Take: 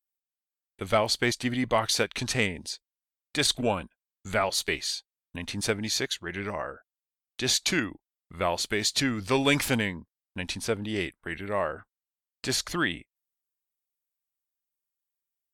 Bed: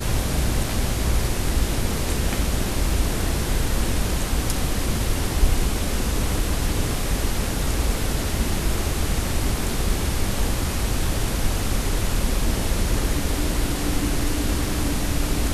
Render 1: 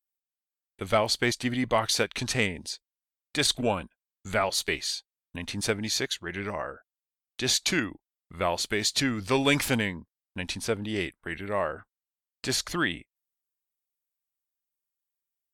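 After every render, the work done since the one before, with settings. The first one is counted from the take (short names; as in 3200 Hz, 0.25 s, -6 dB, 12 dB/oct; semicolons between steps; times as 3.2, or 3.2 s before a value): nothing audible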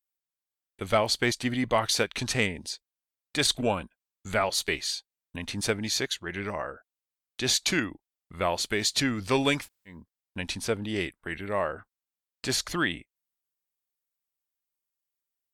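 9.57–9.97 room tone, crossfade 0.24 s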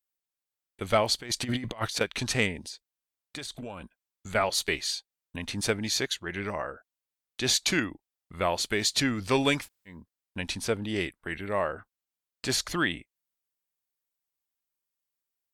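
1.18–2.01 negative-ratio compressor -31 dBFS, ratio -0.5; 2.66–4.35 compressor, threshold -36 dBFS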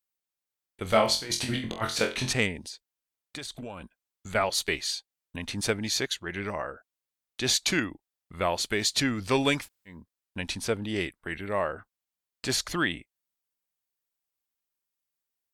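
0.83–2.33 flutter echo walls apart 3.9 m, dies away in 0.3 s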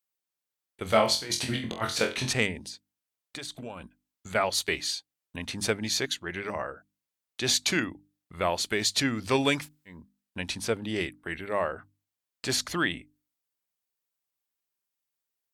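HPF 56 Hz; notches 50/100/150/200/250/300 Hz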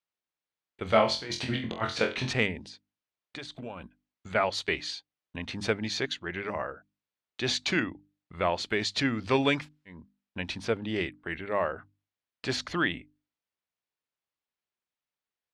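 LPF 3800 Hz 12 dB/oct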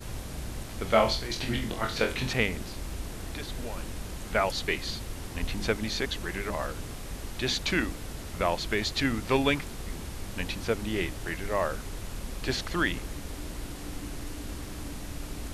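add bed -15 dB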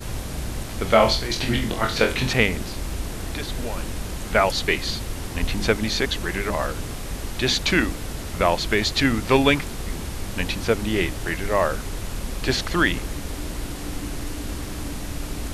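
gain +7.5 dB; limiter -2 dBFS, peak gain reduction 2.5 dB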